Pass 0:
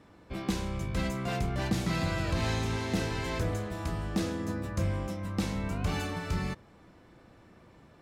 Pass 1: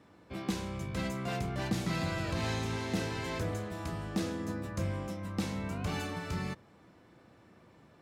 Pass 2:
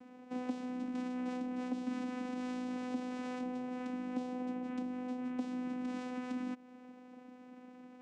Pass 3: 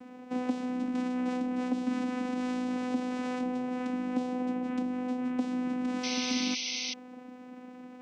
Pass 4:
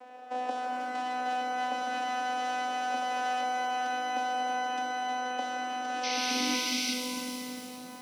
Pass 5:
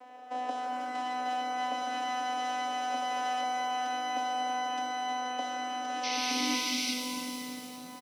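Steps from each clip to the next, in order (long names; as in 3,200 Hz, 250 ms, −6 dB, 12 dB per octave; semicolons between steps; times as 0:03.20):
high-pass filter 84 Hz; level −2.5 dB
downward compressor 6 to 1, threshold −42 dBFS, peak gain reduction 14.5 dB; channel vocoder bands 4, saw 251 Hz; level +7 dB
sound drawn into the spectrogram noise, 0:06.03–0:06.94, 2,000–6,300 Hz −42 dBFS; level +7 dB
high-pass filter sweep 640 Hz → 77 Hz, 0:05.86–0:07.99; reverb with rising layers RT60 2.9 s, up +12 semitones, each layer −8 dB, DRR 1.5 dB
comb filter 7 ms, depth 40%; level −1.5 dB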